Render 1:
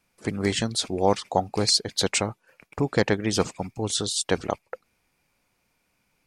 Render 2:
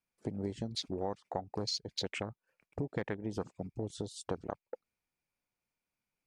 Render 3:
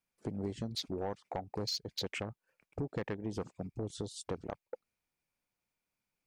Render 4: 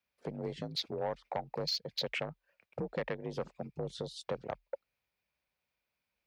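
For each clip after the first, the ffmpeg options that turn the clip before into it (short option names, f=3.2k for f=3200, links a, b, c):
-af "afwtdn=0.0398,acompressor=threshold=-31dB:ratio=4,volume=-3.5dB"
-af "asoftclip=type=tanh:threshold=-28dB,volume=1dB"
-af "equalizer=f=250:t=o:w=1:g=-7,equalizer=f=500:t=o:w=1:g=5,equalizer=f=2k:t=o:w=1:g=4,equalizer=f=4k:t=o:w=1:g=5,equalizer=f=8k:t=o:w=1:g=-10,afreqshift=40"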